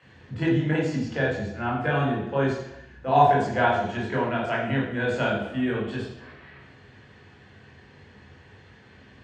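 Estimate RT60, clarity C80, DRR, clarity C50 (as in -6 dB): 0.80 s, 6.0 dB, -4.5 dB, 2.5 dB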